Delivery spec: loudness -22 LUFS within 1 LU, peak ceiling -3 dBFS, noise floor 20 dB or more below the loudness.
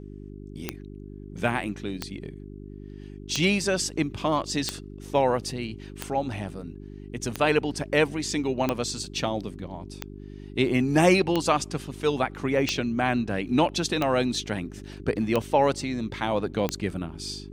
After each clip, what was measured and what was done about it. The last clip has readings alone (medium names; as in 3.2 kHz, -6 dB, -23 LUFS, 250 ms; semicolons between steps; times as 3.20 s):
clicks found 13; hum 50 Hz; highest harmonic 400 Hz; hum level -39 dBFS; loudness -26.5 LUFS; peak level -6.0 dBFS; loudness target -22.0 LUFS
-> de-click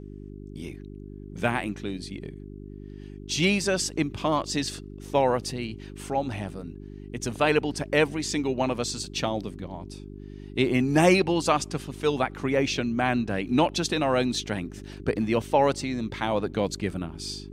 clicks found 0; hum 50 Hz; highest harmonic 400 Hz; hum level -39 dBFS
-> de-hum 50 Hz, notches 8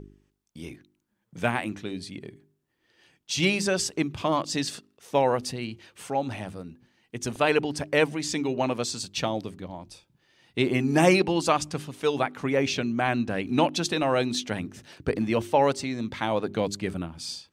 hum not found; loudness -26.5 LUFS; peak level -6.0 dBFS; loudness target -22.0 LUFS
-> trim +4.5 dB; peak limiter -3 dBFS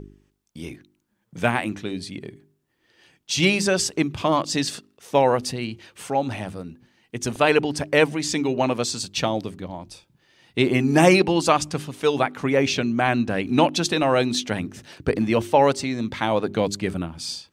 loudness -22.0 LUFS; peak level -3.0 dBFS; noise floor -71 dBFS